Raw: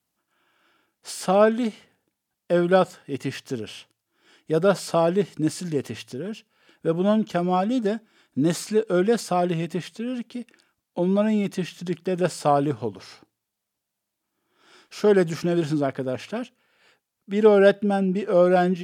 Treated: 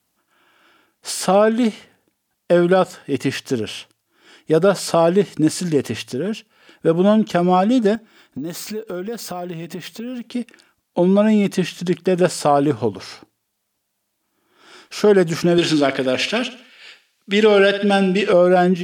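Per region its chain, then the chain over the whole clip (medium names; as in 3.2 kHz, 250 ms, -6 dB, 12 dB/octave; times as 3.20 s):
7.95–10.24 s: compression 4:1, threshold -36 dBFS + careless resampling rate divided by 2×, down filtered, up hold
15.58–18.33 s: frequency weighting D + feedback delay 66 ms, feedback 43%, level -14 dB
whole clip: peaking EQ 140 Hz -4 dB 0.4 oct; compression 2:1, threshold -21 dBFS; loudness maximiser +12 dB; trim -3 dB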